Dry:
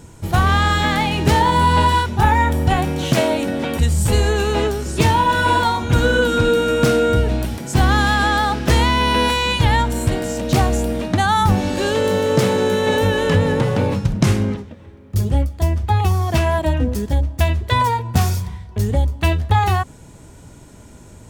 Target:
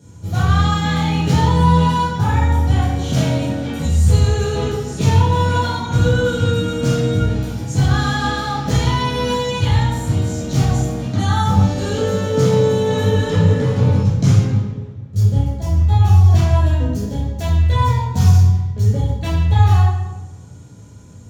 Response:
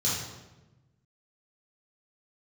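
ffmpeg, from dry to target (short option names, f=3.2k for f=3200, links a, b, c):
-filter_complex "[1:a]atrim=start_sample=2205[a];[0:a][a]afir=irnorm=-1:irlink=0,volume=-14dB"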